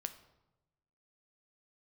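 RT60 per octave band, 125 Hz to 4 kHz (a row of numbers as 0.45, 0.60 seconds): 1.3, 1.2, 1.1, 0.95, 0.70, 0.65 seconds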